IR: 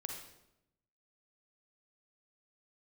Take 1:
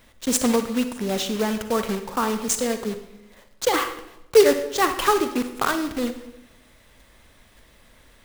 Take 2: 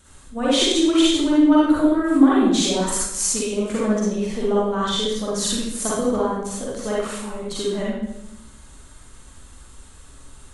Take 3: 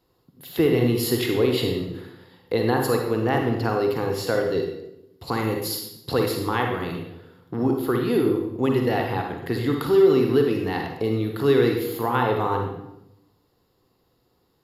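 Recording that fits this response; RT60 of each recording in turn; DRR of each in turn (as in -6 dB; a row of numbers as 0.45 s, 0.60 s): 3; 0.85 s, 0.85 s, 0.85 s; 8.0 dB, -7.5 dB, 2.0 dB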